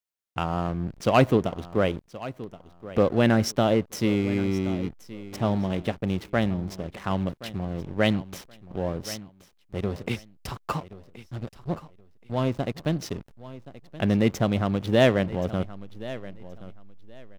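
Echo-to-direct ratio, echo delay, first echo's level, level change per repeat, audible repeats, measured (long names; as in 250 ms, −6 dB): −16.5 dB, 1,075 ms, −16.5 dB, −13.5 dB, 2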